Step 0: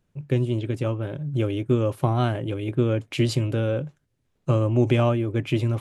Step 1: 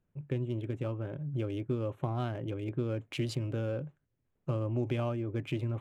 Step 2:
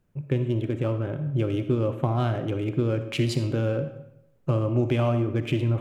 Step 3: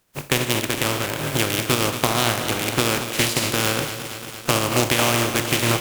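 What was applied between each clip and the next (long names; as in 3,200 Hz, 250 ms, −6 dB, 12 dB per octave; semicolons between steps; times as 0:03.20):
adaptive Wiener filter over 9 samples; downward compressor 2 to 1, threshold −25 dBFS, peak gain reduction 6 dB; level −7 dB
convolution reverb RT60 0.80 s, pre-delay 15 ms, DRR 8.5 dB; level +8.5 dB
compressing power law on the bin magnitudes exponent 0.35; harmonic generator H 7 −26 dB, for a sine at −5.5 dBFS; feedback echo at a low word length 229 ms, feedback 80%, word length 7 bits, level −10.5 dB; level +5 dB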